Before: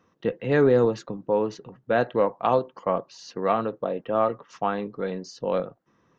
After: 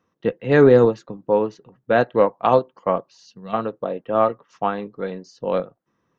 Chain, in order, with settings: time-frequency box 3.26–3.54 s, 250–2600 Hz -15 dB; upward expansion 1.5:1, over -42 dBFS; trim +7 dB

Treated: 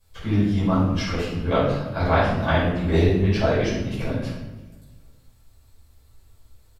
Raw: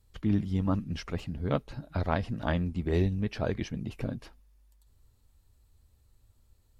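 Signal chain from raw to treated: bass shelf 360 Hz -8.5 dB; feedback delay 327 ms, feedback 43%, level -24 dB; simulated room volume 350 m³, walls mixed, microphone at 5.3 m

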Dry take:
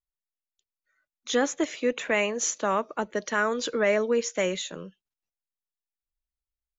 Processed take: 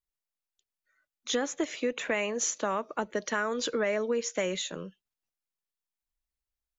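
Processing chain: compression 4:1, threshold -26 dBFS, peak gain reduction 7 dB

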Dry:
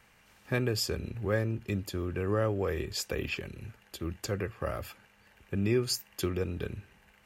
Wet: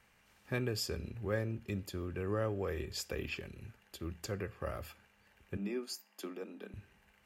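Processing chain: 5.57–6.74 s: rippled Chebyshev high-pass 190 Hz, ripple 6 dB; reverberation RT60 0.45 s, pre-delay 5 ms, DRR 17.5 dB; trim -6 dB

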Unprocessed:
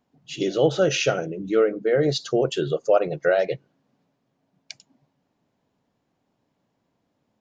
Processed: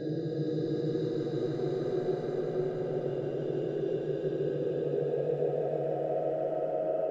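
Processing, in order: time reversed locally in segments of 70 ms; high-pass 170 Hz 12 dB/octave; compression 8:1, threshold -28 dBFS, peak gain reduction 14.5 dB; boxcar filter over 42 samples; hard clipper -25.5 dBFS, distortion -24 dB; phaser 0.46 Hz, delay 4.3 ms, feedback 44%; Paulstretch 8.1×, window 0.50 s, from 2.10 s; multi-head delay 162 ms, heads all three, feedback 62%, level -8 dB; on a send at -4.5 dB: reverberation RT60 2.8 s, pre-delay 3 ms; on the sum: speed mistake 24 fps film run at 25 fps

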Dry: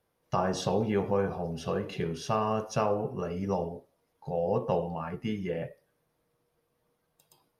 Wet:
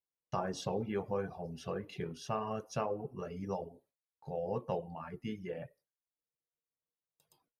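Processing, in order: reverb removal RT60 0.64 s; gate with hold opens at -57 dBFS; trim -7 dB

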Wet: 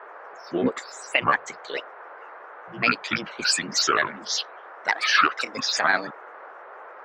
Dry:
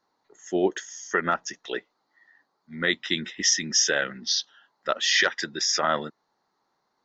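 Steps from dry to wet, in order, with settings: dynamic bell 1.5 kHz, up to +6 dB, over -36 dBFS, Q 0.92; granulator, grains 20 per s, spray 14 ms, pitch spread up and down by 7 st; band noise 420–1600 Hz -43 dBFS

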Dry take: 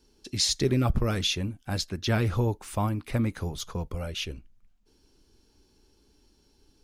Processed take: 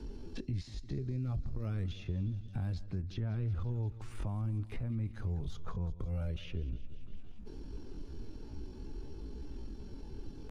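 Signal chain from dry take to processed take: compression 4:1, threshold -43 dBFS, peak gain reduction 20 dB; RIAA curve playback; peak limiter -27.5 dBFS, peak gain reduction 9.5 dB; feedback delay 113 ms, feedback 54%, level -18 dB; tempo 0.65×; three bands compressed up and down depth 70%; trim -1 dB

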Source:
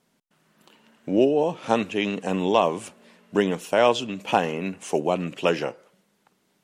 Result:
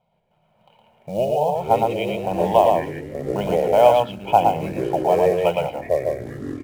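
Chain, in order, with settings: low-pass 2.7 kHz 24 dB/octave; comb 1.3 ms, depth 69%; in parallel at -7 dB: short-mantissa float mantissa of 2-bit; on the sum: static phaser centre 680 Hz, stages 4; on a send: delay 114 ms -3.5 dB; on the sum: ever faster or slower copies 117 ms, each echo -5 st, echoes 3, each echo -6 dB

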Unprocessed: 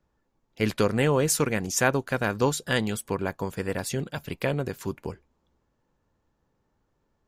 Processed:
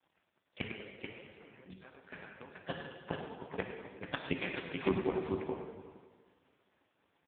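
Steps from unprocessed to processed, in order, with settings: octave divider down 2 oct, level +2 dB; high-pass 43 Hz 6 dB/octave; bass shelf 280 Hz -10 dB; hum notches 60/120/180 Hz; bit crusher 12-bit; inverted gate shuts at -21 dBFS, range -36 dB; on a send: multi-tap echo 101/432 ms -10/-5.5 dB; on the sum: plate-style reverb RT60 1.7 s, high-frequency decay 0.9×, DRR 2 dB; trim +5.5 dB; AMR-NB 4.75 kbps 8 kHz

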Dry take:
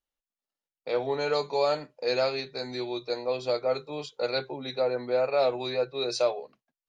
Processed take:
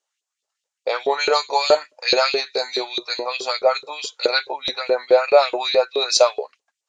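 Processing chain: LFO high-pass saw up 4.7 Hz 390–3600 Hz; resonant low-pass 7.1 kHz, resonance Q 2.9; trim +8.5 dB

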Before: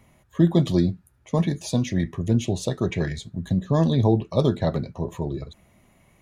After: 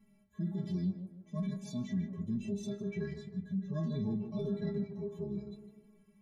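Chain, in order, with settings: resonant low shelf 400 Hz +9.5 dB, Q 1.5; inharmonic resonator 200 Hz, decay 0.24 s, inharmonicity 0.008; peak limiter -24.5 dBFS, peak gain reduction 12.5 dB; harmonic-percussive split percussive -16 dB; on a send: tape echo 155 ms, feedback 50%, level -8 dB, low-pass 1.7 kHz; on the sum: trim -3 dB

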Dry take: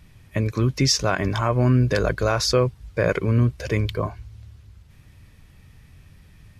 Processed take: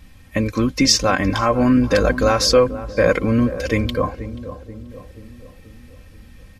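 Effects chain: comb 3.8 ms, depth 74%; on a send: filtered feedback delay 483 ms, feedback 57%, low-pass 970 Hz, level -12.5 dB; on the sum: trim +3.5 dB

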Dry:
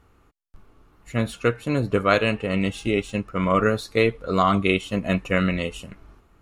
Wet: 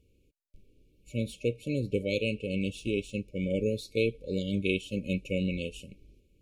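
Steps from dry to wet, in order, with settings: FFT band-reject 600–2200 Hz; trim -7.5 dB

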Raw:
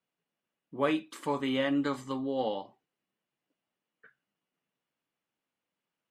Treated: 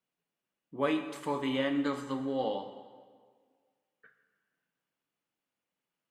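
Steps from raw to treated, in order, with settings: plate-style reverb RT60 1.7 s, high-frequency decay 0.8×, DRR 7.5 dB; trim -2 dB

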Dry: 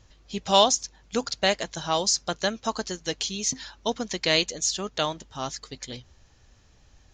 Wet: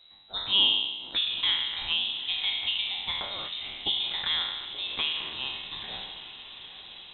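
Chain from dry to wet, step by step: spectral sustain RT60 1.09 s; low-pass that closes with the level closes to 1.4 kHz, closed at -20 dBFS; on a send: echo that smears into a reverb 903 ms, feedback 60%, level -12 dB; on the sum: frequency inversion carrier 3.9 kHz; trim -4 dB

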